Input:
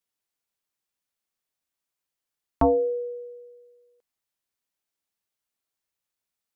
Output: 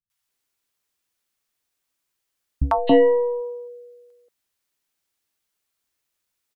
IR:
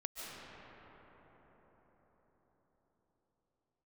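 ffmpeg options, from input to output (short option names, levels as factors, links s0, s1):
-filter_complex "[0:a]asplit=3[s0][s1][s2];[s0]afade=t=out:st=2.77:d=0.02[s3];[s1]aeval=exprs='0.119*(cos(1*acos(clip(val(0)/0.119,-1,1)))-cos(1*PI/2))+0.015*(cos(8*acos(clip(val(0)/0.119,-1,1)))-cos(8*PI/2))':c=same,afade=t=in:st=2.77:d=0.02,afade=t=out:st=3.39:d=0.02[s4];[s2]afade=t=in:st=3.39:d=0.02[s5];[s3][s4][s5]amix=inputs=3:normalize=0,acrossover=split=170|710[s6][s7][s8];[s8]adelay=100[s9];[s7]adelay=280[s10];[s6][s10][s9]amix=inputs=3:normalize=0,volume=2.51"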